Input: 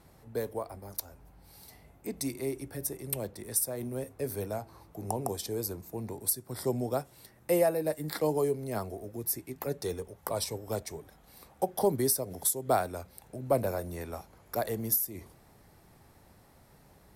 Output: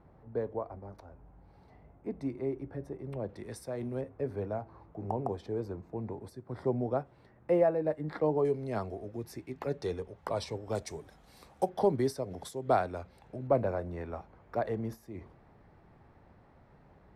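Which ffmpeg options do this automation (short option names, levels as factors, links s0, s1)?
-af "asetnsamples=n=441:p=0,asendcmd='3.29 lowpass f 2900;4.01 lowpass f 1600;8.45 lowpass f 3500;10.75 lowpass f 7200;11.69 lowpass f 3200;13.47 lowpass f 2000',lowpass=1300"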